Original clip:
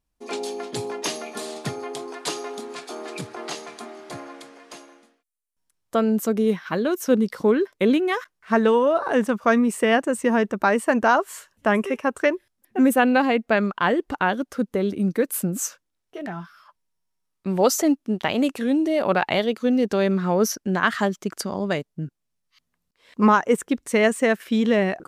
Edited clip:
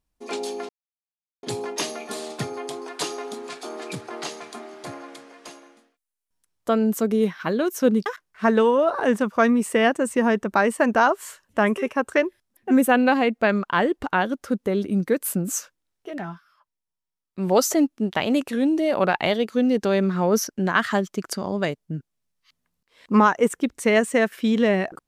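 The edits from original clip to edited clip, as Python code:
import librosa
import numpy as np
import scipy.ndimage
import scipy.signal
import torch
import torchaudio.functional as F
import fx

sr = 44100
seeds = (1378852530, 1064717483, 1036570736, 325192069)

y = fx.edit(x, sr, fx.insert_silence(at_s=0.69, length_s=0.74),
    fx.cut(start_s=7.32, length_s=0.82),
    fx.fade_down_up(start_s=16.36, length_s=1.17, db=-10.0, fade_s=0.13), tone=tone)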